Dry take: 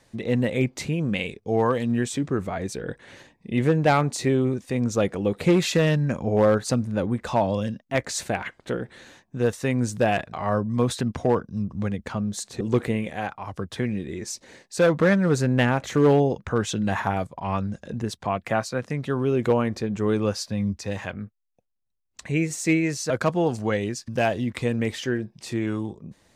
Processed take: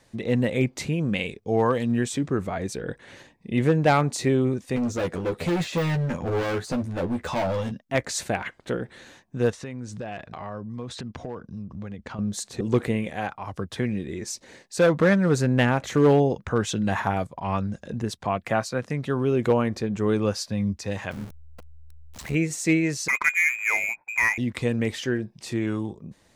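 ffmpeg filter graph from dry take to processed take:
-filter_complex "[0:a]asettb=1/sr,asplit=3[s0][s1][s2];[s0]atrim=end=4.764[s3];[s1]atrim=start=4.76:end=7.72,asetpts=PTS-STARTPTS,afade=t=in:d=0.004:c=qsin,afade=t=out:st=2.956:d=0.004:c=qsin,deesser=0.8,volume=15.8,asoftclip=hard,volume=0.0631,asplit=2[s4][s5];[s5]adelay=12,volume=0.631[s6];[s4][s6]amix=inputs=2:normalize=0,atrim=end_sample=130536[s7];[s2]atrim=start=7.716[s8];[s3][s7]acrossfade=d=0.004:c1=hsin:c2=qsin[s9];[s9][s8]acrossfade=d=0.004:c1=qsin:c2=hsin,asettb=1/sr,asplit=3[s10][s11][s12];[s10]atrim=end=9.504[s13];[s11]atrim=start=9.5:end=12.19,asetpts=PTS-STARTPTS,afade=t=in:d=0.004:c=qsin,afade=t=out:st=2.686:d=0.004:c=qsin,lowpass=6300,acompressor=threshold=0.0224:ratio=4:attack=3.2:release=140:knee=1:detection=peak[s14];[s12]atrim=start=12.186[s15];[s13][s14]acrossfade=d=0.004:c1=hsin:c2=qsin[s16];[s16][s15]acrossfade=d=0.004:c1=qsin:c2=hsin,asettb=1/sr,asplit=3[s17][s18][s19];[s17]atrim=end=21.114[s20];[s18]atrim=start=21.11:end=22.35,asetpts=PTS-STARTPTS,afade=t=in:d=0.004:c=qsin,afade=t=out:st=1.236:d=0.004:c=qsin,aeval=exprs='val(0)+0.5*0.0211*sgn(val(0))':c=same,tremolo=f=77:d=0.667[s21];[s19]atrim=start=22.346[s22];[s20][s21]acrossfade=d=0.004:c1=hsin:c2=qsin[s23];[s23][s22]acrossfade=d=0.004:c1=qsin:c2=hsin,asettb=1/sr,asplit=3[s24][s25][s26];[s24]atrim=end=23.084[s27];[s25]atrim=start=23.08:end=24.38,asetpts=PTS-STARTPTS,afade=t=in:d=0.004:c=qsin,afade=t=out:st=1.296:d=0.004:c=qsin,lowpass=f=2200:t=q:w=0.5098,lowpass=f=2200:t=q:w=0.6013,lowpass=f=2200:t=q:w=0.9,lowpass=f=2200:t=q:w=2.563,afreqshift=-2600,adynamicsmooth=sensitivity=6:basefreq=1800[s28];[s26]atrim=start=24.376[s29];[s27][s28]acrossfade=d=0.004:c1=hsin:c2=qsin[s30];[s30][s29]acrossfade=d=0.004:c1=qsin:c2=hsin"

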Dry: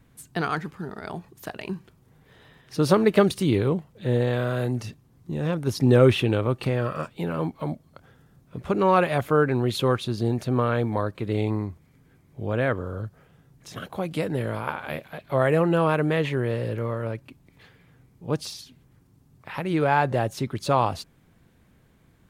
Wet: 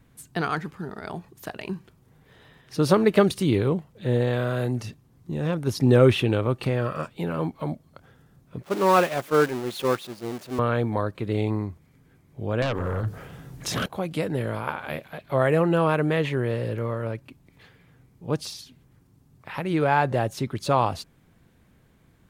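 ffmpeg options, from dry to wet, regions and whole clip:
-filter_complex "[0:a]asettb=1/sr,asplit=3[s0][s1][s2];[s0]atrim=end=8.634[s3];[s1]atrim=start=8.63:end=10.59,asetpts=PTS-STARTPTS,afade=t=in:d=0.004:c=qsin,afade=t=out:st=1.956:d=0.004:c=qsin,aeval=exprs='val(0)+0.5*0.0841*sgn(val(0))':c=same,highpass=200,agate=range=0.0224:threshold=0.158:ratio=3:release=100:detection=peak[s4];[s2]atrim=start=10.586[s5];[s3][s4]acrossfade=d=0.004:c1=hsin:c2=qsin[s6];[s6][s5]acrossfade=d=0.004:c1=qsin:c2=hsin,asettb=1/sr,asplit=3[s7][s8][s9];[s7]atrim=end=12.624[s10];[s8]atrim=start=12.62:end=13.86,asetpts=PTS-STARTPTS,afade=t=in:d=0.004:c=qsin,afade=t=out:st=1.236:d=0.004:c=qsin,acompressor=threshold=0.0224:ratio=5:attack=3.2:release=140:knee=1:detection=peak,bandreject=f=50:t=h:w=6,bandreject=f=100:t=h:w=6,bandreject=f=150:t=h:w=6,bandreject=f=200:t=h:w=6,bandreject=f=250:t=h:w=6,bandreject=f=300:t=h:w=6,bandreject=f=350:t=h:w=6,bandreject=f=400:t=h:w=6,bandreject=f=450:t=h:w=6,aeval=exprs='0.0841*sin(PI/2*3.55*val(0)/0.0841)':c=same[s11];[s9]atrim=start=13.856[s12];[s10][s11]acrossfade=d=0.004:c1=hsin:c2=qsin[s13];[s13][s12]acrossfade=d=0.004:c1=qsin:c2=hsin"

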